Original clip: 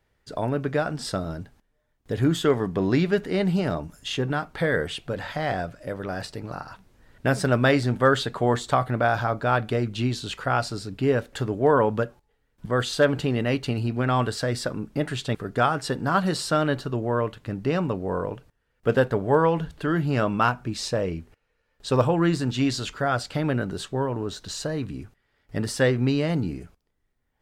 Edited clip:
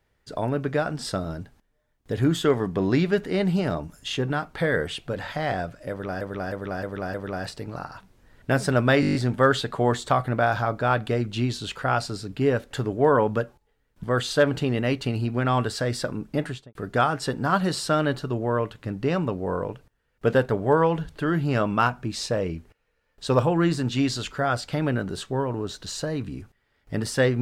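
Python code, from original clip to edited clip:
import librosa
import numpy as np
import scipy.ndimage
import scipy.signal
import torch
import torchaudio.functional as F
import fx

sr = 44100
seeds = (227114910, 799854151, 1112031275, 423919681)

y = fx.studio_fade_out(x, sr, start_s=15.03, length_s=0.34)
y = fx.edit(y, sr, fx.repeat(start_s=5.9, length_s=0.31, count=5),
    fx.stutter(start_s=7.77, slice_s=0.02, count=8), tone=tone)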